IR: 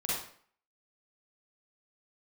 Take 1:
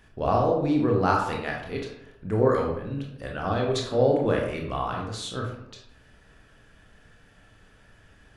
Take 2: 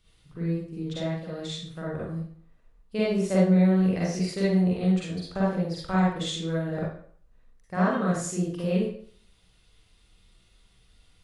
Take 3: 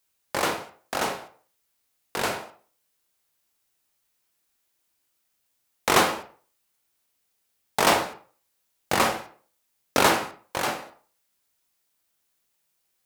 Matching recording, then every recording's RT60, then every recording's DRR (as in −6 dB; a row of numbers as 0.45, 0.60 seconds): 2; 0.80, 0.55, 0.40 seconds; −0.5, −7.5, 3.5 decibels